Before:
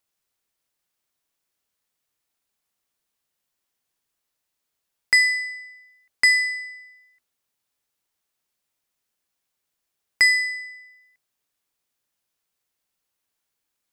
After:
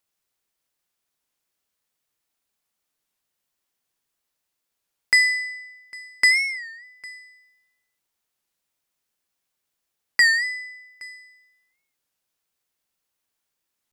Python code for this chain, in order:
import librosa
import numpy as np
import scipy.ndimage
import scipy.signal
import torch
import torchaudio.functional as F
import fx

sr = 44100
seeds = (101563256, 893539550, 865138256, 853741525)

y = fx.hum_notches(x, sr, base_hz=50, count=2)
y = y + 10.0 ** (-23.5 / 20.0) * np.pad(y, (int(803 * sr / 1000.0), 0))[:len(y)]
y = fx.record_warp(y, sr, rpm=33.33, depth_cents=160.0)